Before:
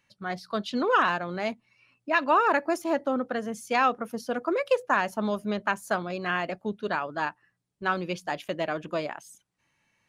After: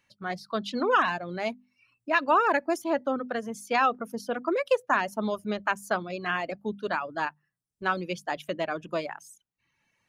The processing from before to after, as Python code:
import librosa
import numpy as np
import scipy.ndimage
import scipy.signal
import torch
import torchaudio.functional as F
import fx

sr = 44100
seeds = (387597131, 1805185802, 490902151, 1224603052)

y = fx.dereverb_blind(x, sr, rt60_s=0.72)
y = fx.hum_notches(y, sr, base_hz=50, count=5)